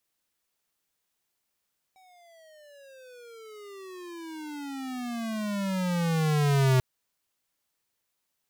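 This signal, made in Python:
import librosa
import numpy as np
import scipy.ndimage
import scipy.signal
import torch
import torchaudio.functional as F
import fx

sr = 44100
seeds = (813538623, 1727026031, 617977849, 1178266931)

y = fx.riser_tone(sr, length_s=4.84, level_db=-20.5, wave='square', hz=764.0, rise_st=-31.0, swell_db=37)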